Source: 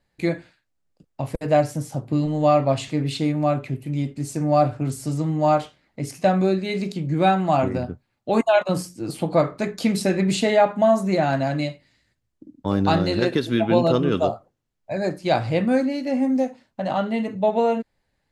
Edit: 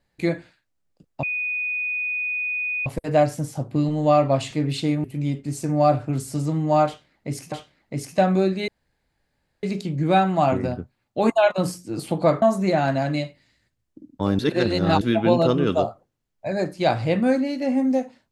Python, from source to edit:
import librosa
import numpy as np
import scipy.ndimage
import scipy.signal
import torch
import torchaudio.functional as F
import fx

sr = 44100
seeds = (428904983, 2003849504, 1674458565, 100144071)

y = fx.edit(x, sr, fx.insert_tone(at_s=1.23, length_s=1.63, hz=2480.0, db=-23.0),
    fx.cut(start_s=3.41, length_s=0.35),
    fx.repeat(start_s=5.58, length_s=0.66, count=2),
    fx.insert_room_tone(at_s=6.74, length_s=0.95),
    fx.cut(start_s=9.53, length_s=1.34),
    fx.reverse_span(start_s=12.84, length_s=0.62), tone=tone)